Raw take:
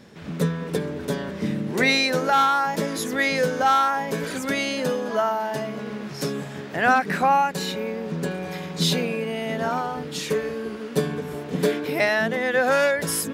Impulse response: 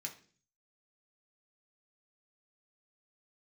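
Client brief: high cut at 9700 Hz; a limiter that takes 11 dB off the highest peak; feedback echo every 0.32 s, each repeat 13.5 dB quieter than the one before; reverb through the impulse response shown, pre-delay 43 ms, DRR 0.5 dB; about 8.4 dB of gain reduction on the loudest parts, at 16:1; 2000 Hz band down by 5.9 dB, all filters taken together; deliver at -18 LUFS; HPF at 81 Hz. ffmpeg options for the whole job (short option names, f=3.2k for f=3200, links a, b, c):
-filter_complex "[0:a]highpass=81,lowpass=9.7k,equalizer=f=2k:t=o:g=-7.5,acompressor=threshold=-24dB:ratio=16,alimiter=level_in=1.5dB:limit=-24dB:level=0:latency=1,volume=-1.5dB,aecho=1:1:320|640:0.211|0.0444,asplit=2[a][b];[1:a]atrim=start_sample=2205,adelay=43[c];[b][c]afir=irnorm=-1:irlink=0,volume=1.5dB[d];[a][d]amix=inputs=2:normalize=0,volume=12.5dB"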